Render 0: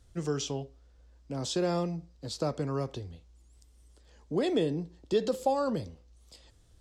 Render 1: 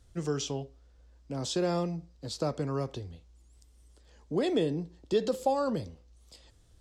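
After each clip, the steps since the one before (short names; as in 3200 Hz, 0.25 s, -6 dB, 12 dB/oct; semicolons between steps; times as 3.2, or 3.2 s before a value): nothing audible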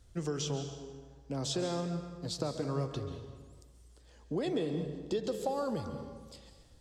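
compressor 4:1, threshold -31 dBFS, peak gain reduction 8.5 dB; plate-style reverb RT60 1.5 s, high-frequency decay 0.7×, pre-delay 0.12 s, DRR 7 dB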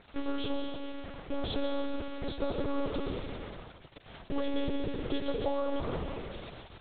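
per-bin compression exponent 0.6; bit-crush 7-bit; monotone LPC vocoder at 8 kHz 280 Hz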